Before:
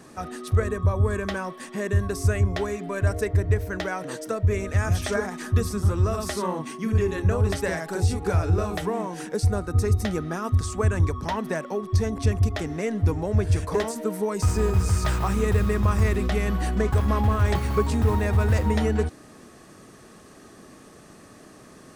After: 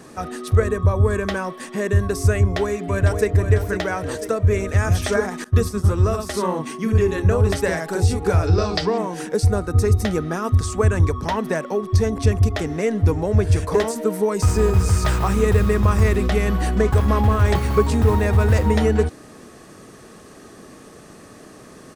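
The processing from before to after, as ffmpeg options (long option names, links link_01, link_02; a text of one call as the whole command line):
ffmpeg -i in.wav -filter_complex "[0:a]asplit=2[link_01][link_02];[link_02]afade=type=in:start_time=2.38:duration=0.01,afade=type=out:start_time=3.33:duration=0.01,aecho=0:1:500|1000|1500|2000|2500:0.375837|0.169127|0.0761071|0.0342482|0.0154117[link_03];[link_01][link_03]amix=inputs=2:normalize=0,asettb=1/sr,asplit=3[link_04][link_05][link_06];[link_04]atrim=end=5.444[link_07];[link_05]atrim=start=5.44:end=6.34,asetpts=PTS-STARTPTS,afade=type=in:duration=0.004:curve=qsin,afade=type=out:start_time=0.896:duration=0.004:curve=qsin,agate=range=-33dB:threshold=-26dB:ratio=3:release=100:detection=peak[link_08];[link_06]atrim=start=6.336[link_09];[link_07][link_08]acrossfade=duration=0.004:curve1=hsin:curve2=qsin[link_10];[link_10][link_09]acrossfade=duration=0.004:curve1=qsin:curve2=hsin,asettb=1/sr,asplit=3[link_11][link_12][link_13];[link_11]atrim=end=8.474[link_14];[link_12]atrim=start=8.47:end=8.98,asetpts=PTS-STARTPTS,afade=type=in:duration=0.004:curve=qsin,afade=type=out:start_time=0.506:duration=0.004:curve=qsin,lowpass=frequency=4800:width_type=q:width=8.5[link_15];[link_13]atrim=start=8.976[link_16];[link_14][link_15]acrossfade=duration=0.004:curve1=hsin:curve2=qsin[link_17];[link_17][link_16]acrossfade=duration=0.004:curve1=qsin:curve2=hsin,equalizer=frequency=460:width=3.8:gain=3,volume=4.5dB" out.wav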